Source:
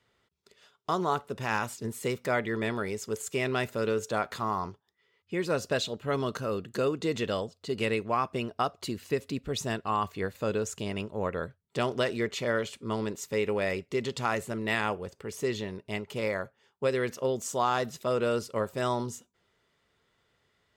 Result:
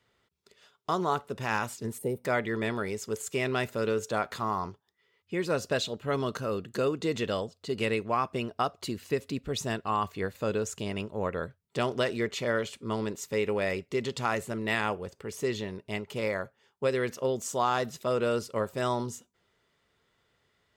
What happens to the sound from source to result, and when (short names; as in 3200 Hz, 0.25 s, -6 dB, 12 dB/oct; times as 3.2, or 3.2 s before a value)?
1.98–2.25 spectral gain 960–8400 Hz -17 dB